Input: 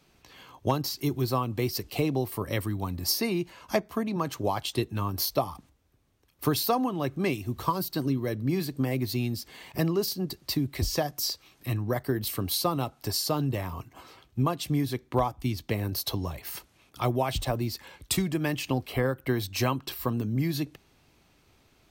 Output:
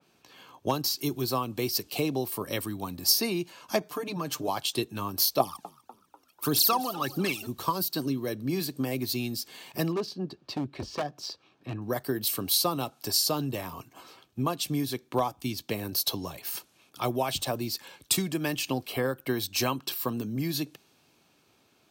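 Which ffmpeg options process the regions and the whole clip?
-filter_complex "[0:a]asettb=1/sr,asplit=3[a][b][c];[a]atrim=end=3.804[d];[b]atrim=start=3.8:end=4.48,asetpts=PTS-STARTPTS,afade=t=in:d=0.004:c=qsin,afade=t=out:st=0.676:d=0.004:c=qsin,aecho=1:1:6.7:0.96,atrim=end_sample=29988,acompressor=threshold=-30dB:ratio=2:attack=3.2:release=140:knee=1:detection=peak[e];[c]atrim=start=4.476[f];[d][e]acrossfade=d=0.004:c1=hsin:c2=qsin[g];[g][f]acrossfade=d=0.004:c1=qsin:c2=hsin,asettb=1/sr,asplit=3[h][i][j];[h]atrim=end=5.404[k];[i]atrim=start=5.4:end=7.47,asetpts=PTS-STARTPTS,afade=t=in:d=0.004:c=qsin,afade=t=out:st=2.066:d=0.004:c=qsin,equalizer=f=82:w=0.49:g=-8.5,aphaser=in_gain=1:out_gain=1:delay=1.7:decay=0.72:speed=1.7:type=triangular,asplit=5[l][m][n][o][p];[m]adelay=246,afreqshift=58,volume=-18.5dB[q];[n]adelay=492,afreqshift=116,volume=-24.5dB[r];[o]adelay=738,afreqshift=174,volume=-30.5dB[s];[p]adelay=984,afreqshift=232,volume=-36.6dB[t];[l][q][r][s][t]amix=inputs=5:normalize=0,atrim=end_sample=91287[u];[j]atrim=start=7.466[v];[k][u]acrossfade=d=0.004:c1=hsin:c2=qsin[w];[w][v]acrossfade=d=0.004:c1=qsin:c2=hsin,asettb=1/sr,asplit=3[x][y][z];[x]atrim=end=9.924[aa];[y]atrim=start=9.92:end=11.82,asetpts=PTS-STARTPTS,afade=t=in:d=0.004:c=qsin,afade=t=out:st=1.896:d=0.004:c=qsin,bandreject=f=2k:w=12,adynamicsmooth=sensitivity=1:basefreq=2.4k,aeval=exprs='0.0794*(abs(mod(val(0)/0.0794+3,4)-2)-1)':c=same[ab];[z]atrim=start=11.816[ac];[aa][ab]acrossfade=d=0.004:c1=hsin:c2=qsin[ad];[ad][ac]acrossfade=d=0.004:c1=qsin:c2=hsin,highpass=160,bandreject=f=2k:w=10,adynamicequalizer=threshold=0.00447:dfrequency=2800:dqfactor=0.7:tfrequency=2800:tqfactor=0.7:attack=5:release=100:ratio=0.375:range=3:mode=boostabove:tftype=highshelf,volume=-1dB"

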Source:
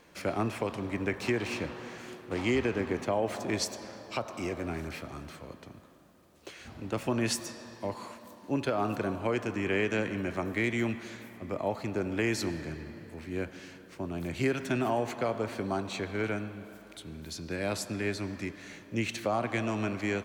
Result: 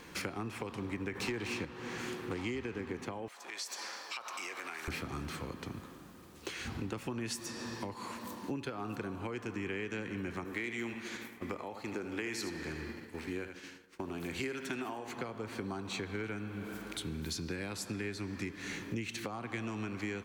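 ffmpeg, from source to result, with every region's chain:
-filter_complex "[0:a]asettb=1/sr,asplit=3[a][b][c];[a]atrim=end=1.154[d];[b]atrim=start=1.15:end=1.65,asetpts=PTS-STARTPTS,afade=t=in:d=0.004:c=qsin,afade=t=out:st=0.496:d=0.004:c=qsin,highpass=48,aeval=exprs='0.133*sin(PI/2*1.41*val(0)/0.133)':c=same[e];[c]atrim=start=1.646[f];[d][e]acrossfade=d=0.004:c1=hsin:c2=qsin[g];[g][f]acrossfade=d=0.004:c1=qsin:c2=hsin,asettb=1/sr,asplit=3[h][i][j];[h]atrim=end=3.284[k];[i]atrim=start=3.28:end=4.88,asetpts=PTS-STARTPTS,afade=t=in:d=0.004:c=qsin,afade=t=out:st=1.596:d=0.004:c=qsin,highpass=970,acompressor=threshold=-44dB:ratio=6:attack=3.2:release=140:knee=1:detection=peak[l];[j]atrim=start=4.876[m];[k][l]acrossfade=d=0.004:c1=hsin:c2=qsin[n];[n][m]acrossfade=d=0.004:c1=qsin:c2=hsin,asettb=1/sr,asplit=3[o][p][q];[o]atrim=end=10.444[r];[p]atrim=start=10.44:end=15.08,asetpts=PTS-STARTPTS,afade=t=in:d=0.004:c=qsin,afade=t=out:st=4.636:d=0.004:c=qsin,agate=range=-33dB:threshold=-41dB:ratio=3:release=100:detection=peak,equalizer=f=120:t=o:w=1.7:g=-11.5,aecho=1:1:77:0.335,atrim=end_sample=204624[s];[q]atrim=start=15.076[t];[r][s]acrossfade=d=0.004:c1=hsin:c2=qsin[u];[u][t]acrossfade=d=0.004:c1=qsin:c2=hsin,acompressor=threshold=-43dB:ratio=8,equalizer=f=620:t=o:w=0.33:g=-12.5,volume=8dB"

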